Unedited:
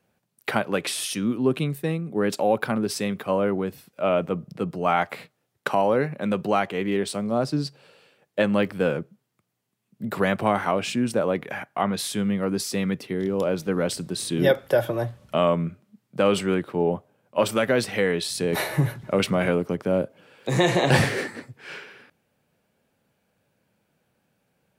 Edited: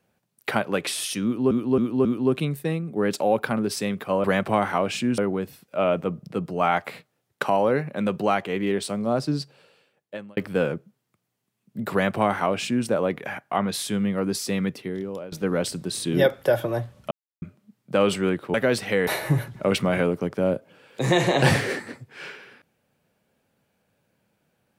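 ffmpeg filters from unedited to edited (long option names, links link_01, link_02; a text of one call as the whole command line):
ffmpeg -i in.wav -filter_complex "[0:a]asplit=12[link_01][link_02][link_03][link_04][link_05][link_06][link_07][link_08][link_09][link_10][link_11][link_12];[link_01]atrim=end=1.512[link_13];[link_02]atrim=start=1.238:end=1.512[link_14];[link_03]atrim=start=1.238:end=1.512[link_15];[link_04]atrim=start=1.238:end=3.432[link_16];[link_05]atrim=start=10.168:end=11.112[link_17];[link_06]atrim=start=3.428:end=8.62,asetpts=PTS-STARTPTS,afade=type=out:start_time=4.202:duration=0.99[link_18];[link_07]atrim=start=8.62:end=13.57,asetpts=PTS-STARTPTS,afade=type=in:duration=0.004:curve=hsin,afade=type=out:start_time=4.32:duration=0.63:silence=0.11885[link_19];[link_08]atrim=start=13.57:end=15.36,asetpts=PTS-STARTPTS,afade=type=in:duration=0.004:curve=hsin:silence=0.11885,afade=type=out:start_time=1.786:duration=0.004:curve=hsin[link_20];[link_09]atrim=start=15.36:end=15.67,asetpts=PTS-STARTPTS,volume=0[link_21];[link_10]atrim=start=15.67:end=16.792,asetpts=PTS-STARTPTS,afade=type=in:duration=0.004:curve=hsin[link_22];[link_11]atrim=start=17.598:end=18.132[link_23];[link_12]atrim=start=18.548[link_24];[link_13][link_14]acrossfade=duration=0.004:curve1=hsin:curve2=hsin[link_25];[link_25][link_15]acrossfade=duration=0.004:curve1=hsin:curve2=hsin[link_26];[link_26][link_16]acrossfade=duration=0.004:curve1=hsin:curve2=hsin[link_27];[link_27][link_17]acrossfade=duration=0.004:curve1=hsin:curve2=hsin[link_28];[link_18][link_19][link_20][link_21][link_22]concat=n=5:v=0:a=1[link_29];[link_28][link_29]acrossfade=duration=0.004:curve1=hsin:curve2=hsin[link_30];[link_30][link_23]acrossfade=duration=0.004:curve1=hsin:curve2=hsin[link_31];[link_31][link_24]acrossfade=duration=0.004:curve1=hsin:curve2=hsin" out.wav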